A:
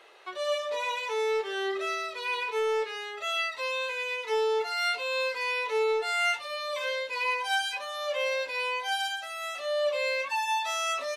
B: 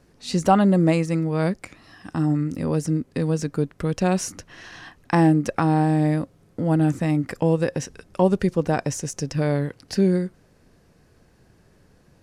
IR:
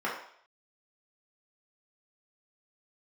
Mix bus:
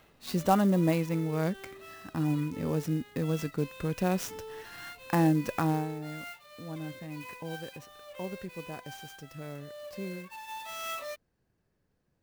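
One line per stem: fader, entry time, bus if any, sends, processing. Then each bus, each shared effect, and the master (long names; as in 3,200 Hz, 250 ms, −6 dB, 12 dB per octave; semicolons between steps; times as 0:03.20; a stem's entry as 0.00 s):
−6.0 dB, 0.00 s, no send, automatic ducking −11 dB, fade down 0.25 s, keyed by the second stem
0:05.70 −7.5 dB → 0:05.95 −20 dB, 0.00 s, no send, no processing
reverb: not used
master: converter with an unsteady clock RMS 0.024 ms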